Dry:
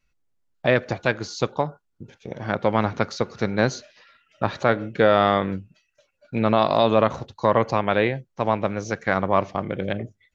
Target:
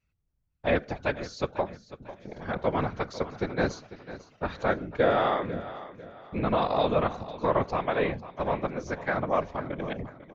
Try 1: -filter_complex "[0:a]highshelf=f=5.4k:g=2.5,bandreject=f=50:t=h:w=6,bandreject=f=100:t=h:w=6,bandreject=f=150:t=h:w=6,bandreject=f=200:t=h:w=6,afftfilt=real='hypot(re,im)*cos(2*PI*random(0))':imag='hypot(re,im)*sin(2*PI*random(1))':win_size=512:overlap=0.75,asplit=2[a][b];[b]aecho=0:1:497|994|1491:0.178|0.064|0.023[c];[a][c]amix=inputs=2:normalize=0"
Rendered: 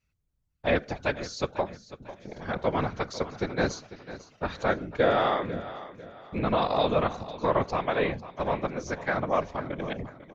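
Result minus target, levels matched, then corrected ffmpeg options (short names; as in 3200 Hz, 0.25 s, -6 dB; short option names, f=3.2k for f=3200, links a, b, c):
8000 Hz band +5.5 dB
-filter_complex "[0:a]highshelf=f=5.4k:g=-8,bandreject=f=50:t=h:w=6,bandreject=f=100:t=h:w=6,bandreject=f=150:t=h:w=6,bandreject=f=200:t=h:w=6,afftfilt=real='hypot(re,im)*cos(2*PI*random(0))':imag='hypot(re,im)*sin(2*PI*random(1))':win_size=512:overlap=0.75,asplit=2[a][b];[b]aecho=0:1:497|994|1491:0.178|0.064|0.023[c];[a][c]amix=inputs=2:normalize=0"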